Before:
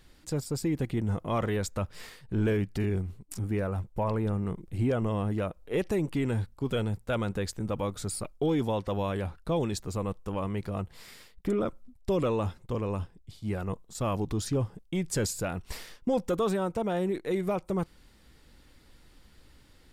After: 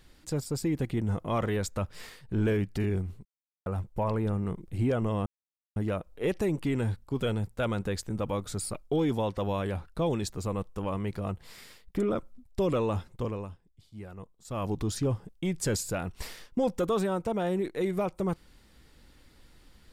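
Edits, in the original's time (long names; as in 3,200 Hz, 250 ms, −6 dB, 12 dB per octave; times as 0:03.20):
0:03.25–0:03.66: silence
0:05.26: splice in silence 0.50 s
0:12.72–0:14.22: duck −11 dB, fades 0.29 s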